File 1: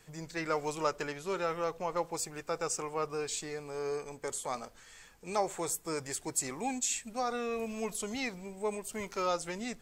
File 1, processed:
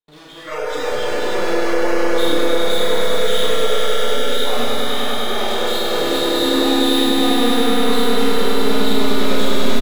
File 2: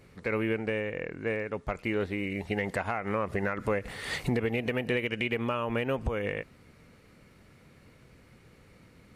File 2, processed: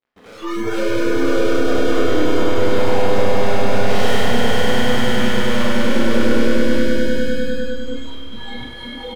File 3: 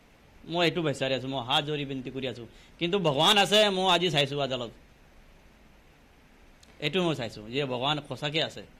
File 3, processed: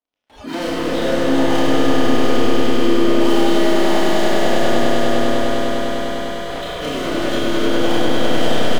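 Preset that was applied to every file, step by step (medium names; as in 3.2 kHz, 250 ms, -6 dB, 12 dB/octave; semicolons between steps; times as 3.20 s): knee-point frequency compression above 2.9 kHz 4:1; gate with hold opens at -45 dBFS; high-order bell 530 Hz +11.5 dB 2.6 oct; reverse; compression 6:1, threshold -28 dBFS; reverse; peak limiter -25 dBFS; waveshaping leveller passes 5; doubling 30 ms -10.5 dB; on a send: echo with a slow build-up 100 ms, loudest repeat 5, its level -5.5 dB; on the sum: Schroeder reverb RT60 1.4 s, combs from 26 ms, DRR -4 dB; spectral noise reduction 17 dB; tape noise reduction on one side only encoder only; trim -1.5 dB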